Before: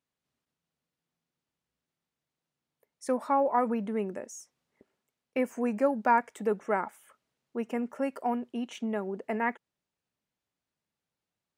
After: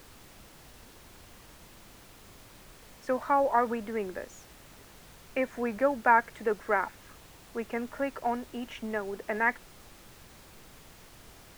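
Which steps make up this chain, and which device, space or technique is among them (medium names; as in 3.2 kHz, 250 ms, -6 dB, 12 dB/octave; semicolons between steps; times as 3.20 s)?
horn gramophone (band-pass 270–4300 Hz; peaking EQ 1.7 kHz +7.5 dB; wow and flutter; pink noise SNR 19 dB)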